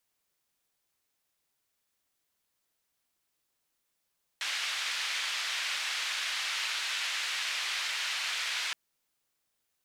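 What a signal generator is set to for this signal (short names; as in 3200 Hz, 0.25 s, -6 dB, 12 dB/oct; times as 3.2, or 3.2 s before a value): noise band 1800–3300 Hz, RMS -33.5 dBFS 4.32 s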